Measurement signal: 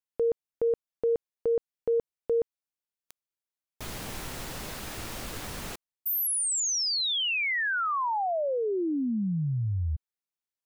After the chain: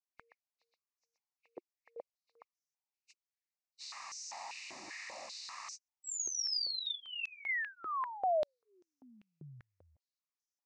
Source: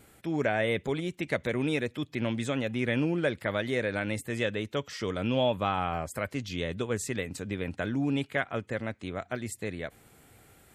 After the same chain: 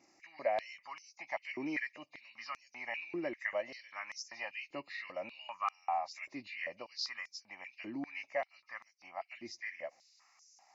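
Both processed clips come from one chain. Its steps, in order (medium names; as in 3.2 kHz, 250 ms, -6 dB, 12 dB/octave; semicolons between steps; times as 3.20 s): knee-point frequency compression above 2.1 kHz 1.5:1; static phaser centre 2.2 kHz, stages 8; step-sequenced high-pass 5.1 Hz 360–5900 Hz; trim -6.5 dB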